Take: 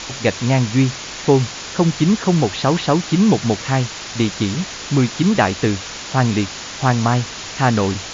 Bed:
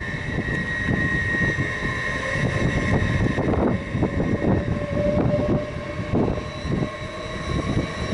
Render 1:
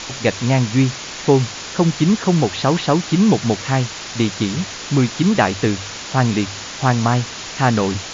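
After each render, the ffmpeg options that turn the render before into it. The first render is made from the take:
ffmpeg -i in.wav -af "bandreject=frequency=50:width_type=h:width=4,bandreject=frequency=100:width_type=h:width=4" out.wav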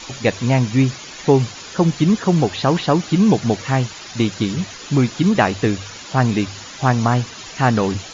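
ffmpeg -i in.wav -af "afftdn=noise_reduction=10:noise_floor=-31" out.wav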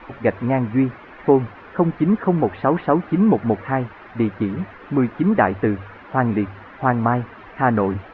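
ffmpeg -i in.wav -af "lowpass=frequency=1900:width=0.5412,lowpass=frequency=1900:width=1.3066,equalizer=frequency=140:width_type=o:width=0.51:gain=-9.5" out.wav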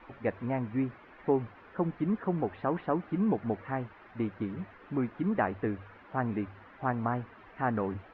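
ffmpeg -i in.wav -af "volume=-12.5dB" out.wav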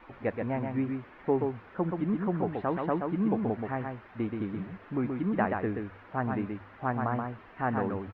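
ffmpeg -i in.wav -af "aecho=1:1:128:0.596" out.wav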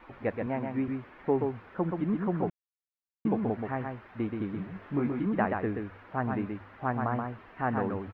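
ffmpeg -i in.wav -filter_complex "[0:a]asettb=1/sr,asplit=3[link_01][link_02][link_03];[link_01]atrim=end=0.464[link_04];[link_02]atrim=start=0.46:end=0.88,asetpts=PTS-STARTPTS,afade=type=in:duration=0.004:curve=qsin,afade=type=out:start_time=0.416:duration=0.004:curve=qsin,highpass=140[link_05];[link_03]atrim=start=0.876[link_06];[link_04][link_05]acrossfade=duration=0.004:curve1=hsin:curve2=qsin[link_07];[link_07][link_06]acrossfade=duration=0.004:curve1=qsin:curve2=hsin,asettb=1/sr,asplit=3[link_08][link_09][link_10];[link_08]atrim=end=4.734[link_11];[link_09]atrim=start=4.73:end=5.26,asetpts=PTS-STARTPTS,afade=type=in:duration=0.004:curve=qsin,afade=type=out:start_time=0.526:duration=0.004:curve=qsin,asplit=2[link_12][link_13];[link_13]adelay=21,volume=-4dB[link_14];[link_12][link_14]amix=inputs=2:normalize=0,atrim=end_sample=23373[link_15];[link_10]atrim=start=5.256[link_16];[link_11][link_15]acrossfade=duration=0.004:curve1=hsin:curve2=qsin[link_17];[link_17][link_16]acrossfade=duration=0.004:curve1=qsin:curve2=hsin,asplit=3[link_18][link_19][link_20];[link_18]atrim=end=2.5,asetpts=PTS-STARTPTS,afade=type=out:start_time=2.496:duration=0.004:curve=hsin[link_21];[link_19]atrim=start=2.5:end=3.25,asetpts=PTS-STARTPTS,volume=0[link_22];[link_20]atrim=start=3.25,asetpts=PTS-STARTPTS,afade=type=in:duration=0.004:curve=hsin[link_23];[link_21][link_22][link_23]concat=n=3:v=0:a=1" out.wav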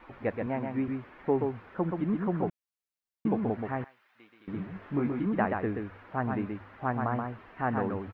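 ffmpeg -i in.wav -filter_complex "[0:a]asettb=1/sr,asplit=3[link_01][link_02][link_03];[link_01]atrim=end=3.844[link_04];[link_02]atrim=start=3.84:end=4.48,asetpts=PTS-STARTPTS,afade=type=in:duration=0.004:curve=qsin,afade=type=out:start_time=0.636:duration=0.004:curve=qsin,aderivative[link_05];[link_03]atrim=start=4.476[link_06];[link_04][link_05]acrossfade=duration=0.004:curve1=hsin:curve2=qsin[link_07];[link_07][link_06]acrossfade=duration=0.004:curve1=qsin:curve2=hsin" out.wav

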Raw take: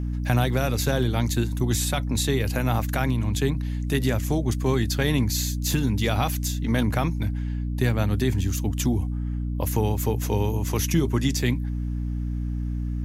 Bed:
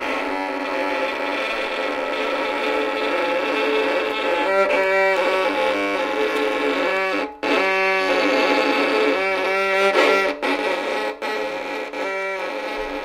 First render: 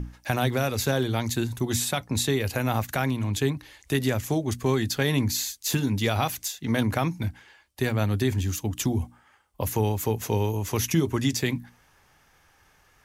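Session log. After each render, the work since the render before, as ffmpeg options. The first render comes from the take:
ffmpeg -i in.wav -af "bandreject=frequency=60:width_type=h:width=6,bandreject=frequency=120:width_type=h:width=6,bandreject=frequency=180:width_type=h:width=6,bandreject=frequency=240:width_type=h:width=6,bandreject=frequency=300:width_type=h:width=6" out.wav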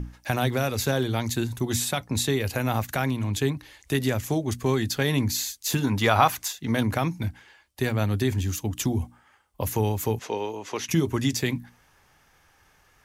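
ffmpeg -i in.wav -filter_complex "[0:a]asettb=1/sr,asplit=3[link_01][link_02][link_03];[link_01]atrim=end=5.844[link_04];[link_02]atrim=start=5.84:end=6.53,asetpts=PTS-STARTPTS,afade=type=in:duration=0.004:curve=qsin,afade=type=out:start_time=0.686:duration=0.004:curve=qsin,equalizer=frequency=1100:width=0.78:gain=11[link_05];[link_03]atrim=start=6.526[link_06];[link_04][link_05]acrossfade=duration=0.004:curve1=hsin:curve2=qsin[link_07];[link_07][link_06]acrossfade=duration=0.004:curve1=qsin:curve2=hsin,asettb=1/sr,asplit=3[link_08][link_09][link_10];[link_08]atrim=end=10.194[link_11];[link_09]atrim=start=10.19:end=10.89,asetpts=PTS-STARTPTS,afade=type=in:duration=0.004:curve=qsin,afade=type=out:start_time=0.696:duration=0.004:curve=qsin,highpass=350,lowpass=5000[link_12];[link_10]atrim=start=10.886[link_13];[link_11][link_12]acrossfade=duration=0.004:curve1=hsin:curve2=qsin[link_14];[link_14][link_13]acrossfade=duration=0.004:curve1=qsin:curve2=hsin" out.wav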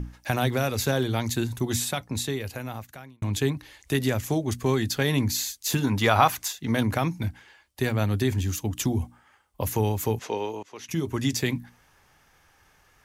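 ffmpeg -i in.wav -filter_complex "[0:a]asplit=3[link_01][link_02][link_03];[link_01]atrim=end=3.22,asetpts=PTS-STARTPTS,afade=type=out:start_time=1.64:duration=1.58[link_04];[link_02]atrim=start=3.22:end=10.63,asetpts=PTS-STARTPTS,afade=type=in:duration=0.004:curve=hsin,afade=type=out:start_time=7.406:duration=0.004:curve=hsin:silence=0.112202[link_05];[link_03]atrim=start=10.63,asetpts=PTS-STARTPTS,afade=type=in:duration=0.72:silence=0.112202[link_06];[link_04][link_05][link_06]concat=n=3:v=0:a=1" out.wav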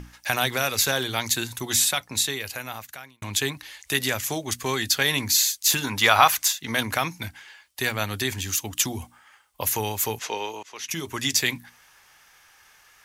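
ffmpeg -i in.wav -af "tiltshelf=frequency=680:gain=-9" out.wav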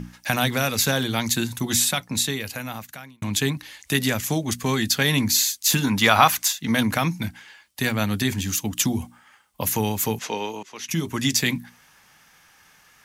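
ffmpeg -i in.wav -af "equalizer=frequency=190:width_type=o:width=1.4:gain=13,bandreject=frequency=380:width=12" out.wav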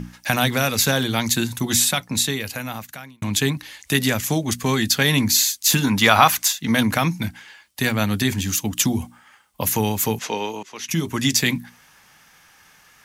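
ffmpeg -i in.wav -af "volume=2.5dB,alimiter=limit=-1dB:level=0:latency=1" out.wav

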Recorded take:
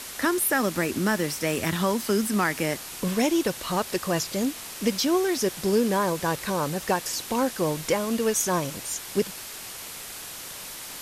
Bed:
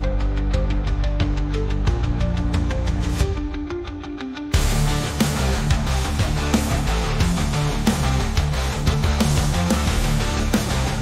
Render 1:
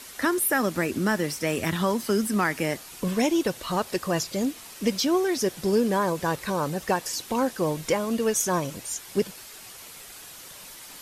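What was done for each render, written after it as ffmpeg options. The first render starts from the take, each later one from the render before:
ffmpeg -i in.wav -af "afftdn=noise_reduction=7:noise_floor=-39" out.wav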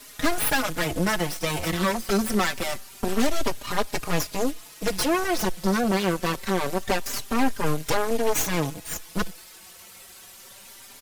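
ffmpeg -i in.wav -filter_complex "[0:a]aeval=exprs='0.316*(cos(1*acos(clip(val(0)/0.316,-1,1)))-cos(1*PI/2))+0.1*(cos(8*acos(clip(val(0)/0.316,-1,1)))-cos(8*PI/2))':channel_layout=same,asplit=2[link_01][link_02];[link_02]adelay=4.4,afreqshift=0.25[link_03];[link_01][link_03]amix=inputs=2:normalize=1" out.wav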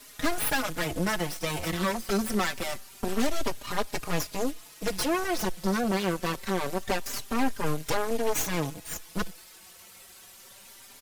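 ffmpeg -i in.wav -af "volume=-4dB" out.wav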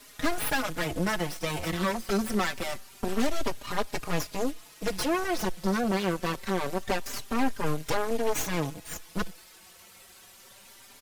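ffmpeg -i in.wav -af "highshelf=frequency=5500:gain=-4" out.wav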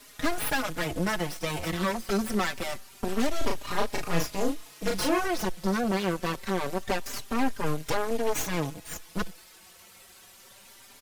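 ffmpeg -i in.wav -filter_complex "[0:a]asettb=1/sr,asplit=3[link_01][link_02][link_03];[link_01]atrim=end=3.384[link_04];[link_02]atrim=start=3.38:end=5.28,asetpts=PTS-STARTPTS,afade=type=in:duration=0.004:curve=qsin,afade=type=out:start_time=1.896:duration=0.004:curve=qsin,asplit=2[link_05][link_06];[link_06]adelay=36,volume=-3dB[link_07];[link_05][link_07]amix=inputs=2:normalize=0,atrim=end_sample=83790[link_08];[link_03]atrim=start=5.276[link_09];[link_04][link_08]acrossfade=duration=0.004:curve1=hsin:curve2=qsin[link_10];[link_10][link_09]acrossfade=duration=0.004:curve1=qsin:curve2=hsin" out.wav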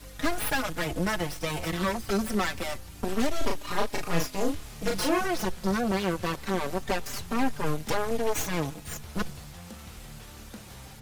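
ffmpeg -i in.wav -i bed.wav -filter_complex "[1:a]volume=-25dB[link_01];[0:a][link_01]amix=inputs=2:normalize=0" out.wav

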